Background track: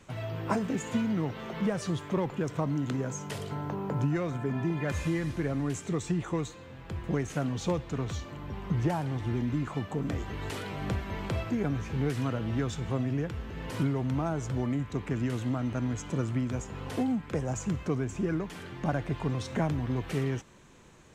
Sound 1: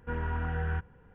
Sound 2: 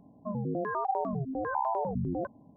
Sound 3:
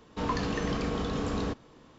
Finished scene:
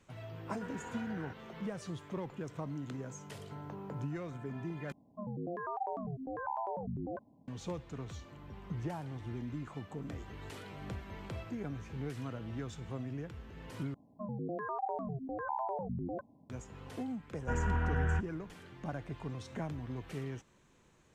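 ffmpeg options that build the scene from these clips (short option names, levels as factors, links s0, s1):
-filter_complex "[1:a]asplit=2[s0][s1];[2:a]asplit=2[s2][s3];[0:a]volume=0.299[s4];[s0]highpass=250[s5];[s4]asplit=3[s6][s7][s8];[s6]atrim=end=4.924[s9];[s2]atrim=end=2.56,asetpts=PTS-STARTPTS,volume=0.422[s10];[s7]atrim=start=7.476:end=13.944[s11];[s3]atrim=end=2.56,asetpts=PTS-STARTPTS,volume=0.473[s12];[s8]atrim=start=16.496[s13];[s5]atrim=end=1.14,asetpts=PTS-STARTPTS,volume=0.335,afade=t=in:d=0.004:c=hsin,afade=t=out:st=1.136:d=0.004:c=hsin,adelay=530[s14];[s1]atrim=end=1.14,asetpts=PTS-STARTPTS,afade=t=in:d=0.004:c=hsin,afade=t=out:st=1.136:d=0.004:c=hsin,adelay=17400[s15];[s9][s10]acrossfade=d=0.004:c1=hsin:c2=hsin[s16];[s16][s11]acrossfade=d=0.004:c1=hsin:c2=hsin[s17];[s17][s12]acrossfade=d=0.004:c1=hsin:c2=hsin[s18];[s18][s13]acrossfade=d=0.004:c1=hsin:c2=hsin[s19];[s19][s14][s15]amix=inputs=3:normalize=0"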